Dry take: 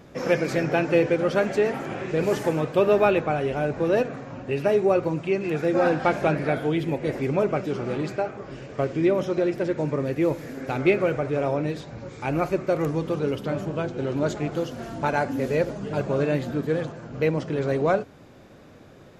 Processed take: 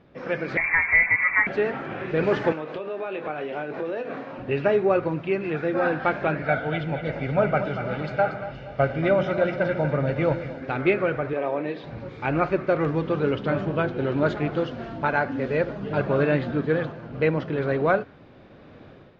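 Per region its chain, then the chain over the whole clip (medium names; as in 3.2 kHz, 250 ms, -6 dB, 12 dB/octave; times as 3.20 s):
0.57–1.47 s: upward compressor, threshold -22 dBFS + frequency inversion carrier 2.5 kHz
2.52–4.39 s: high-pass 270 Hz + compression 16:1, threshold -30 dBFS + doubling 26 ms -9 dB
6.42–10.62 s: comb 1.4 ms, depth 60% + two-band feedback delay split 480 Hz, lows 145 ms, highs 236 ms, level -9 dB + three bands expanded up and down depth 40%
11.33–11.84 s: high-pass 280 Hz + distance through air 100 m + band-stop 1.4 kHz, Q 6.7
whole clip: low-pass 4 kHz 24 dB/octave; dynamic bell 1.5 kHz, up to +6 dB, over -42 dBFS, Q 1.6; level rider; trim -7.5 dB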